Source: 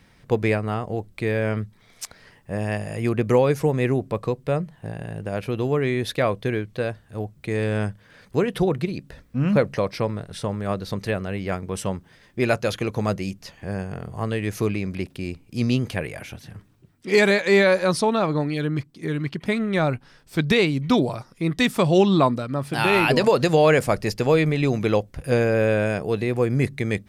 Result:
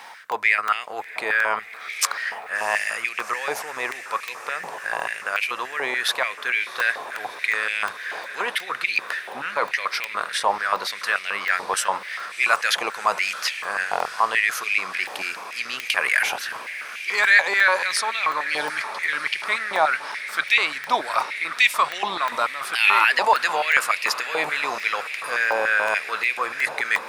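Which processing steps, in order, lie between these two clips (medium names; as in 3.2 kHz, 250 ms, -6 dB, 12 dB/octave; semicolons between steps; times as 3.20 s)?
in parallel at +0.5 dB: peak limiter -19 dBFS, peak gain reduction 12 dB; on the sum: reverse; compression 6:1, threshold -25 dBFS, peak gain reduction 14.5 dB; reverse; echo that smears into a reverb 713 ms, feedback 78%, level -14.5 dB; crackling interface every 0.36 s, samples 128, zero, from 0.32 s; step-sequenced high-pass 6.9 Hz 860–2300 Hz; trim +8.5 dB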